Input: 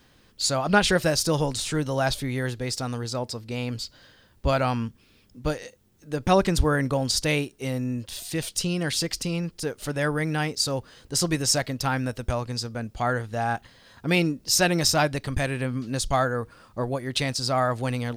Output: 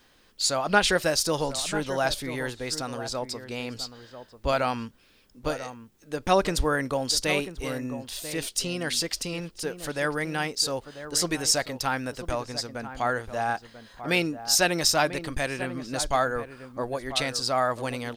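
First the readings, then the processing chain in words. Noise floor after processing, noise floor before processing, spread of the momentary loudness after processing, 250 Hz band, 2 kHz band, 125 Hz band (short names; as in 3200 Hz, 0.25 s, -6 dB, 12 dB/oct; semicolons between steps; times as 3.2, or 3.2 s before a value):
-60 dBFS, -59 dBFS, 12 LU, -4.5 dB, 0.0 dB, -9.0 dB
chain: bell 110 Hz -10.5 dB 2.2 oct; outdoor echo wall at 170 m, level -11 dB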